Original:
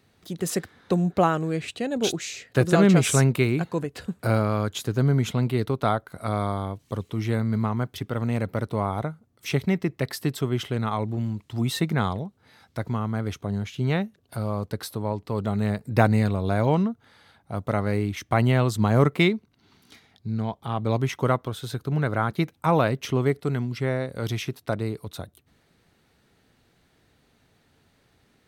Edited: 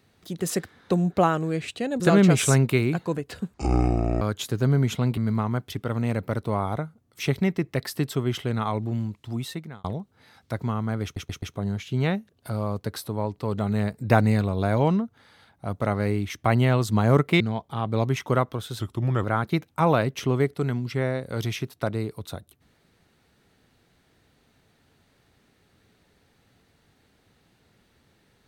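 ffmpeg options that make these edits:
-filter_complex "[0:a]asplit=12[a][b][c][d][e][f][g][h][i][j][k][l];[a]atrim=end=2.002[m];[b]atrim=start=2.658:end=4.204[n];[c]atrim=start=4.2:end=4.57,asetpts=PTS-STARTPTS,asetrate=24255,aresample=44100,atrim=end_sample=29667,asetpts=PTS-STARTPTS[o];[d]atrim=start=4.566:end=5.532[p];[e]atrim=start=7.428:end=12.1,asetpts=PTS-STARTPTS,afade=t=out:st=3.842:d=0.83[q];[f]atrim=start=12.1:end=13.422,asetpts=PTS-STARTPTS,afade=t=in:d=0.004:c=hsin[r];[g]atrim=start=13.288:end=13.422[s];[h]atrim=start=13.288:end=13.422[t];[i]atrim=start=13.288:end=19.272[u];[j]atrim=start=20.328:end=21.724[v];[k]atrim=start=21.72:end=22.1,asetpts=PTS-STARTPTS,asetrate=37485,aresample=44100,atrim=end_sample=19715,asetpts=PTS-STARTPTS[w];[l]atrim=start=22.096[x];[m][n]acrossfade=d=0.004:c1=hsin:c2=hsin[y];[y][o]acrossfade=d=0.004:c1=hsin:c2=hsin[z];[z][p]acrossfade=d=0.004:c1=hsin:c2=hsin[aa];[q][r]concat=n=2:v=0:a=1[ab];[aa][ab]acrossfade=d=0.004:c1=hsin:c2=hsin[ac];[ac][s]acrossfade=d=0.004:c1=hsin:c2=hsin[ad];[ad][t]acrossfade=d=0.004:c1=hsin:c2=hsin[ae];[ae][u]acrossfade=d=0.004:c1=hsin:c2=hsin[af];[af][v]acrossfade=d=0.004:c1=hsin:c2=hsin[ag];[ag][w]acrossfade=d=0.004:c1=hsin:c2=hsin[ah];[ah][x]acrossfade=d=0.004:c1=hsin:c2=hsin"

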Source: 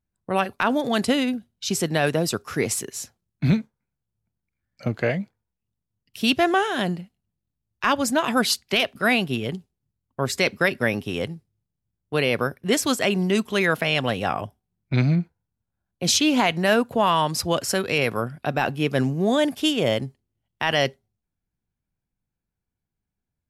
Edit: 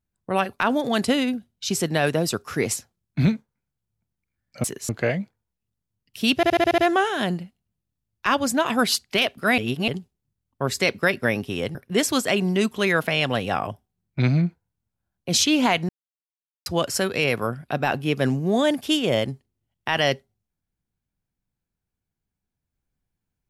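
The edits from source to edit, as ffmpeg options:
-filter_complex "[0:a]asplit=15[a][b][c][d][e][f][g][h][i][j][k][l][m][n][o];[a]atrim=end=2.762[p];[b]atrim=start=3.008:end=4.892[q];[c]atrim=start=2.758:end=3.012[r];[d]atrim=start=4.888:end=6.432[s];[e]atrim=start=6.358:end=6.432[t];[f]atrim=start=6.358:end=6.432[u];[g]atrim=start=6.358:end=6.432[v];[h]atrim=start=6.358:end=6.432[w];[i]atrim=start=6.358:end=6.432[x];[j]atrim=start=6.358:end=9.162[y];[k]atrim=start=9.158:end=9.462,asetpts=PTS-STARTPTS,areverse[z];[l]atrim=start=9.458:end=11.332[aa];[m]atrim=start=12.488:end=16.63,asetpts=PTS-STARTPTS,afade=t=out:st=4.138:d=0.004:c=hsin[ab];[n]atrim=start=16.63:end=17.4,asetpts=PTS-STARTPTS,volume=0[ac];[o]atrim=start=17.4,asetpts=PTS-STARTPTS,afade=t=in:d=0.004:c=hsin[ad];[p][q]acrossfade=d=0.004:c1=hsin:c2=hsin[ae];[ae][r]acrossfade=d=0.004:c1=hsin:c2=hsin[af];[af][s]acrossfade=d=0.004:c1=hsin:c2=hsin[ag];[ag][t]acrossfade=d=0.004:c1=hsin:c2=hsin[ah];[ah][u]acrossfade=d=0.004:c1=hsin:c2=hsin[ai];[ai][v]acrossfade=d=0.004:c1=hsin:c2=hsin[aj];[aj][w]acrossfade=d=0.004:c1=hsin:c2=hsin[ak];[ak][x]acrossfade=d=0.004:c1=hsin:c2=hsin[al];[al][y]acrossfade=d=0.004:c1=hsin:c2=hsin[am];[am][z]acrossfade=d=0.004:c1=hsin:c2=hsin[an];[an][aa]acrossfade=d=0.004:c1=hsin:c2=hsin[ao];[ab][ac][ad]concat=n=3:v=0:a=1[ap];[ao][ap]acrossfade=d=0.004:c1=hsin:c2=hsin"

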